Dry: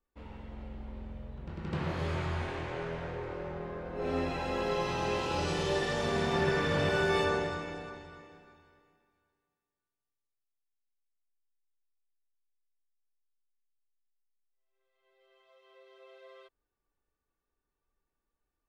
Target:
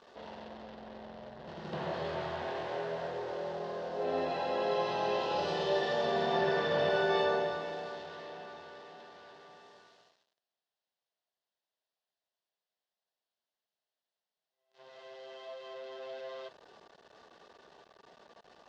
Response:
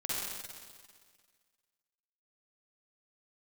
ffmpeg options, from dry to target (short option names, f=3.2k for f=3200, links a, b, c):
-af "aeval=exprs='val(0)+0.5*0.00708*sgn(val(0))':c=same,acrusher=bits=7:mix=0:aa=0.5,highpass=250,equalizer=f=290:t=q:w=4:g=-9,equalizer=f=660:t=q:w=4:g=7,equalizer=f=1.3k:t=q:w=4:g=-6,equalizer=f=2.3k:t=q:w=4:g=-10,lowpass=f=4.7k:w=0.5412,lowpass=f=4.7k:w=1.3066"